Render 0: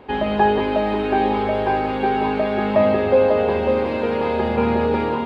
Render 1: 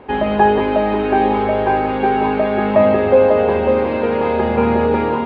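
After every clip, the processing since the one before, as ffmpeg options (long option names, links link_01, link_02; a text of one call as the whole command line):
ffmpeg -i in.wav -af "bass=frequency=250:gain=-1,treble=frequency=4000:gain=-14,volume=4dB" out.wav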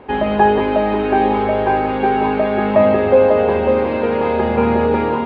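ffmpeg -i in.wav -af anull out.wav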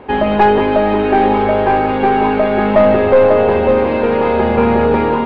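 ffmpeg -i in.wav -af "aeval=exprs='(tanh(2.24*val(0)+0.25)-tanh(0.25))/2.24':channel_layout=same,volume=4.5dB" out.wav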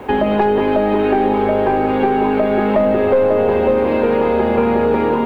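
ffmpeg -i in.wav -filter_complex "[0:a]acrossover=split=230|460[link_01][link_02][link_03];[link_01]acompressor=threshold=-33dB:ratio=4[link_04];[link_02]acompressor=threshold=-21dB:ratio=4[link_05];[link_03]acompressor=threshold=-25dB:ratio=4[link_06];[link_04][link_05][link_06]amix=inputs=3:normalize=0,acrusher=bits=9:mix=0:aa=0.000001,volume=4.5dB" out.wav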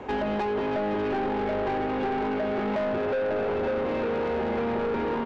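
ffmpeg -i in.wav -af "aresample=16000,aresample=44100,asoftclip=type=tanh:threshold=-17dB,volume=-7dB" out.wav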